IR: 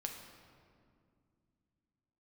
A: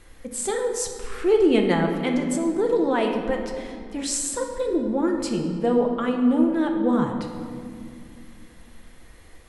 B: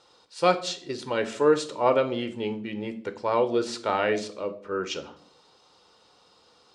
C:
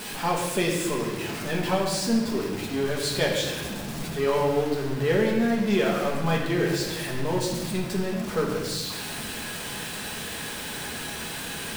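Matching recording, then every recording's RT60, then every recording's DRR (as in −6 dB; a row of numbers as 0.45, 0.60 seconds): A; 2.2, 0.55, 1.3 seconds; 2.0, 8.5, −3.0 decibels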